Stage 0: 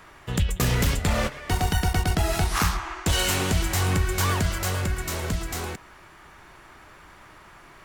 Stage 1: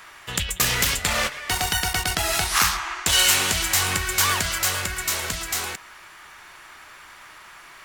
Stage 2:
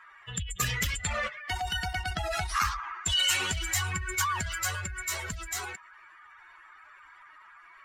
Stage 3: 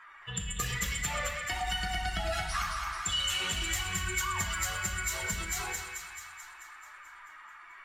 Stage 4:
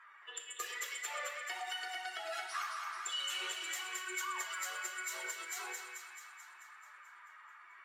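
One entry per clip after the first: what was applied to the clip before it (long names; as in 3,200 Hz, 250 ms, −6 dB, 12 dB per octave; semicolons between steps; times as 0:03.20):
tilt shelving filter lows −9 dB, about 730 Hz
expanding power law on the bin magnitudes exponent 2.3; level −7.5 dB
downward compressor, threshold −32 dBFS, peak gain reduction 10 dB; delay with a high-pass on its return 218 ms, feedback 63%, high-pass 1,400 Hz, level −5 dB; rectangular room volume 330 cubic metres, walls mixed, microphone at 0.82 metres
Chebyshev high-pass with heavy ripple 350 Hz, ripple 3 dB; level −5.5 dB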